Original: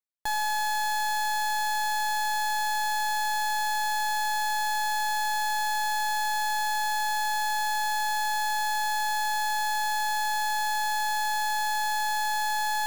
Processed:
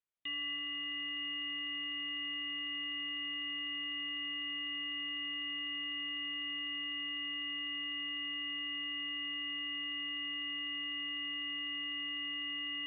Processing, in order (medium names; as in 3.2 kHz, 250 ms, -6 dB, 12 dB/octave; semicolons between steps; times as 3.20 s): peak limiter -37 dBFS, peak gain reduction 10 dB; Chebyshev shaper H 2 -13 dB, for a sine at -37 dBFS; band-passed feedback delay 306 ms, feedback 77%, band-pass 1.3 kHz, level -12 dB; frequency inversion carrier 3.7 kHz